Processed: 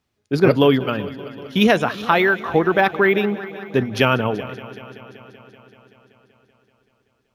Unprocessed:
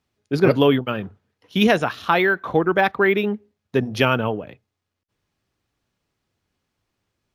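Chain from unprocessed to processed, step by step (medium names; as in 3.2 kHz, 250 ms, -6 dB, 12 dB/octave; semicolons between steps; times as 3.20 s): multi-head delay 191 ms, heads first and second, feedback 64%, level -20 dB; trim +1.5 dB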